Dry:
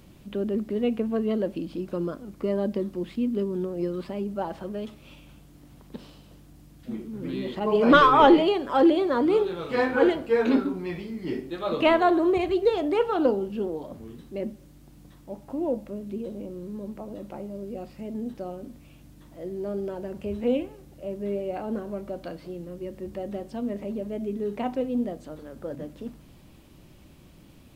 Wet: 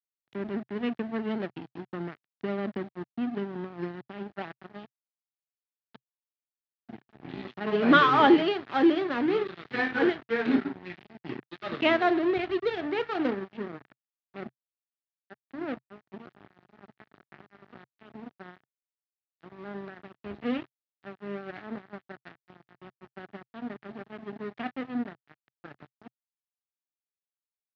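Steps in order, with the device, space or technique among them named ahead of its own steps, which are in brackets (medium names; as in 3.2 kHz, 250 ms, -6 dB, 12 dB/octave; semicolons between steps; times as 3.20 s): blown loudspeaker (crossover distortion -31.5 dBFS; cabinet simulation 120–4200 Hz, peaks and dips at 130 Hz +4 dB, 520 Hz -10 dB, 1 kHz -6 dB, 1.8 kHz +5 dB)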